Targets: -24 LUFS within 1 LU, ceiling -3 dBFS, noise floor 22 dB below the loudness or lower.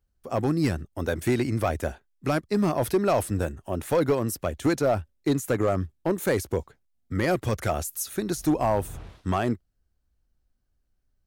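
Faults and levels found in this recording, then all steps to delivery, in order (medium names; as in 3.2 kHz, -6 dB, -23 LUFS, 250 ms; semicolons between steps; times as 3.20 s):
clipped samples 0.7%; clipping level -16.0 dBFS; loudness -27.0 LUFS; peak level -16.0 dBFS; loudness target -24.0 LUFS
-> clip repair -16 dBFS; trim +3 dB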